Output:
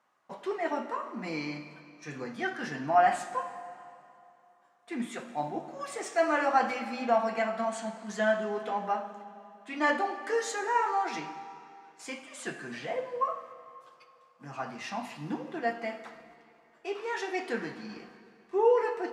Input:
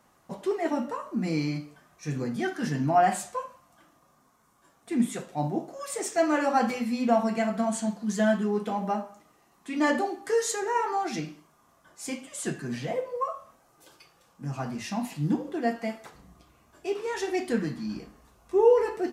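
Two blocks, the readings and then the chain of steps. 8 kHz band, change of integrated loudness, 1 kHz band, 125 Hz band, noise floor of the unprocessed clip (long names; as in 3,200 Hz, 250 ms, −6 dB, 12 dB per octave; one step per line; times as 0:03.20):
−8.5 dB, −3.0 dB, 0.0 dB, −13.0 dB, −64 dBFS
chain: noise gate −52 dBFS, range −8 dB
resonant band-pass 1,500 Hz, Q 0.59
comb and all-pass reverb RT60 2.7 s, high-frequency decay 0.9×, pre-delay 25 ms, DRR 11.5 dB
level +1.5 dB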